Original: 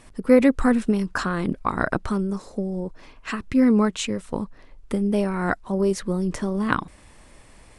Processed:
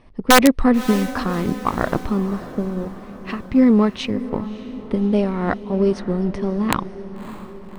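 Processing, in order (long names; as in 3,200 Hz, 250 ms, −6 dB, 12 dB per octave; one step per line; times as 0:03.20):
parametric band 1,500 Hz −8.5 dB 0.26 octaves
in parallel at −4.5 dB: slack as between gear wheels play −22.5 dBFS
on the sum: Savitzky-Golay smoothing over 15 samples
wrap-around overflow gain 3 dB
on a send: feedback delay with all-pass diffusion 593 ms, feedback 57%, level −13.5 dB
on the sum: one half of a high-frequency compander decoder only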